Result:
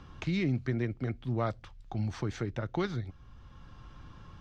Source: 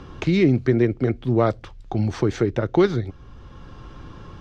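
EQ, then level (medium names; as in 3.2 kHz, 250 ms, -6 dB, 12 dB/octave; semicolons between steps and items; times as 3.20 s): peaking EQ 400 Hz -8.5 dB 1.1 oct; -9.0 dB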